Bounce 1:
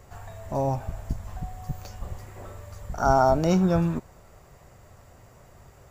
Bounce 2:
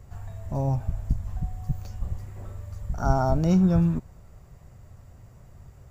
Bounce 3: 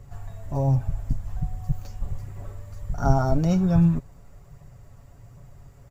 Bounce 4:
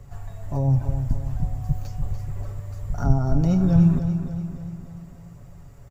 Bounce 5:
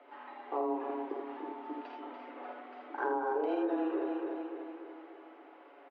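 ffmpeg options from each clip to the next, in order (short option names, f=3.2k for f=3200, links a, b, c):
-af "bass=f=250:g=12,treble=f=4k:g=1,volume=-6.5dB"
-af "aphaser=in_gain=1:out_gain=1:delay=4.6:decay=0.26:speed=1.3:type=triangular,aecho=1:1:7.1:0.43"
-filter_complex "[0:a]acrossover=split=370[a][b];[b]acompressor=threshold=-34dB:ratio=6[c];[a][c]amix=inputs=2:normalize=0,asplit=2[d][e];[e]aecho=0:1:291|582|873|1164|1455|1746:0.355|0.192|0.103|0.0559|0.0302|0.0163[f];[d][f]amix=inputs=2:normalize=0,volume=1.5dB"
-af "aecho=1:1:52|80:0.531|0.596,highpass=f=240:t=q:w=0.5412,highpass=f=240:t=q:w=1.307,lowpass=f=3.2k:t=q:w=0.5176,lowpass=f=3.2k:t=q:w=0.7071,lowpass=f=3.2k:t=q:w=1.932,afreqshift=150,acompressor=threshold=-29dB:ratio=6"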